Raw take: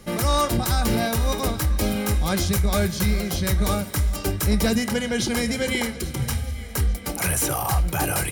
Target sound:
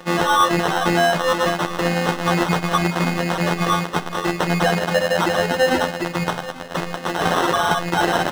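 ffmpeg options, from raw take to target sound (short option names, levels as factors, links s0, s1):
-filter_complex "[0:a]afftfilt=real='hypot(re,im)*cos(PI*b)':imag='0':win_size=1024:overlap=0.75,acrusher=samples=19:mix=1:aa=0.000001,asplit=2[s0][s1];[s1]highpass=f=720:p=1,volume=15.8,asoftclip=type=tanh:threshold=0.631[s2];[s0][s2]amix=inputs=2:normalize=0,lowpass=f=3300:p=1,volume=0.501"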